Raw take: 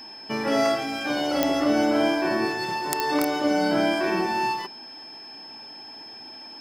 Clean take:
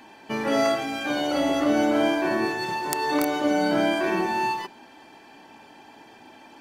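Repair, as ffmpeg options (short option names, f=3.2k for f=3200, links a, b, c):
-af "adeclick=t=4,bandreject=f=5.2k:w=30"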